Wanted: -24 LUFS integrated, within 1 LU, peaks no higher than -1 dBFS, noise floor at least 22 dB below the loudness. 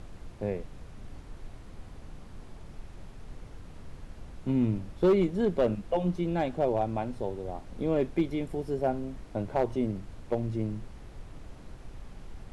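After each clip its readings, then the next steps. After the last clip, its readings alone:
clipped 0.4%; flat tops at -18.0 dBFS; noise floor -47 dBFS; noise floor target -53 dBFS; loudness -30.5 LUFS; peak -18.0 dBFS; loudness target -24.0 LUFS
-> clip repair -18 dBFS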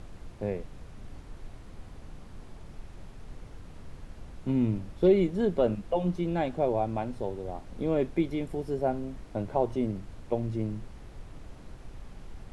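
clipped 0.0%; noise floor -47 dBFS; noise floor target -52 dBFS
-> noise print and reduce 6 dB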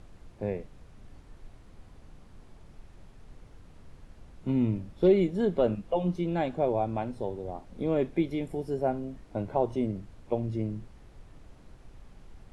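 noise floor -53 dBFS; loudness -30.0 LUFS; peak -12.5 dBFS; loudness target -24.0 LUFS
-> gain +6 dB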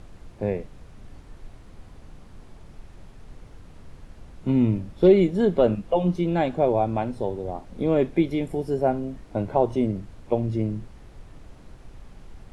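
loudness -24.0 LUFS; peak -6.5 dBFS; noise floor -47 dBFS

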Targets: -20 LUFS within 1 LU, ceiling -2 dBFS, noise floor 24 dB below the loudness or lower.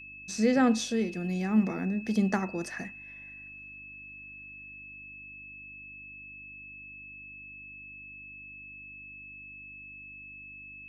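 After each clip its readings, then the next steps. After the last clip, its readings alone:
hum 50 Hz; harmonics up to 300 Hz; hum level -58 dBFS; steady tone 2600 Hz; tone level -44 dBFS; loudness -29.0 LUFS; peak -14.0 dBFS; loudness target -20.0 LUFS
-> de-hum 50 Hz, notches 6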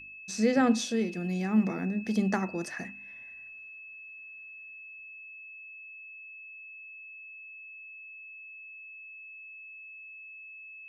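hum none; steady tone 2600 Hz; tone level -44 dBFS
-> notch 2600 Hz, Q 30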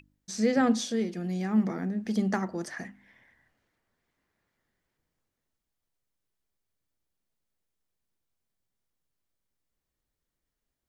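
steady tone none; loudness -28.5 LUFS; peak -14.0 dBFS; loudness target -20.0 LUFS
-> gain +8.5 dB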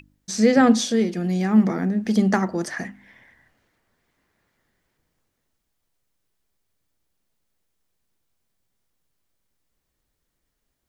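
loudness -20.5 LUFS; peak -5.5 dBFS; noise floor -77 dBFS

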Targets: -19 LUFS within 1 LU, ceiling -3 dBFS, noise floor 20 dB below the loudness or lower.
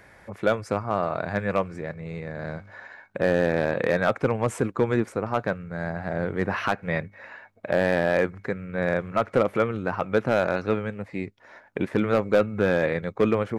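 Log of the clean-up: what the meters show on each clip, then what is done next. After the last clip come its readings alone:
clipped 0.4%; flat tops at -12.0 dBFS; loudness -26.0 LUFS; peak -12.0 dBFS; loudness target -19.0 LUFS
-> clip repair -12 dBFS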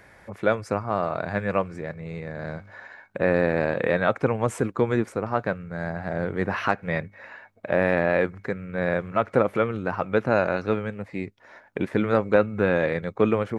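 clipped 0.0%; loudness -25.5 LUFS; peak -4.5 dBFS; loudness target -19.0 LUFS
-> gain +6.5 dB; limiter -3 dBFS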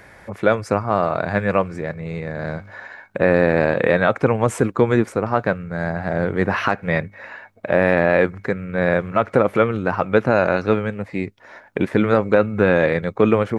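loudness -19.5 LUFS; peak -3.0 dBFS; noise floor -48 dBFS

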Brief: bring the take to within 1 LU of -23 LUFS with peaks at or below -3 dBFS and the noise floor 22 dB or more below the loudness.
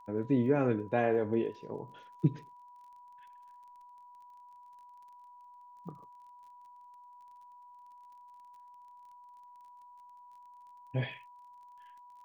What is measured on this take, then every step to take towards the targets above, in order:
ticks 26/s; steady tone 980 Hz; tone level -52 dBFS; loudness -32.0 LUFS; peak -15.0 dBFS; loudness target -23.0 LUFS
-> de-click; notch 980 Hz, Q 30; gain +9 dB

